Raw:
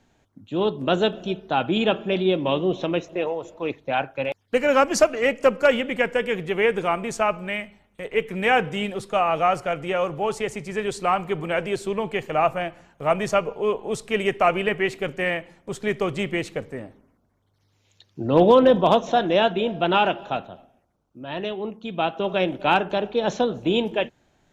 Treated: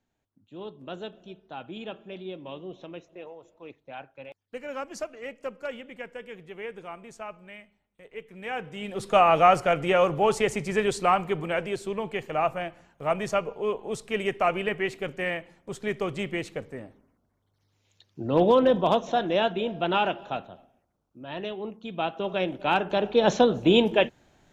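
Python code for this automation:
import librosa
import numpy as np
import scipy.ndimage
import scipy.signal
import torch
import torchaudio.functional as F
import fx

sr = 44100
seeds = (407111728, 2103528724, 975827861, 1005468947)

y = fx.gain(x, sr, db=fx.line((8.31, -17.0), (8.81, -10.0), (9.08, 2.5), (10.72, 2.5), (11.77, -5.0), (22.7, -5.0), (23.21, 2.5)))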